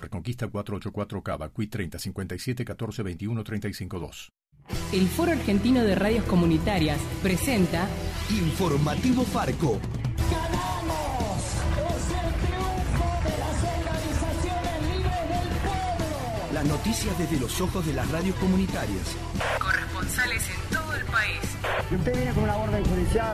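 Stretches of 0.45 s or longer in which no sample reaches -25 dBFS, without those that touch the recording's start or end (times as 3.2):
4.05–4.73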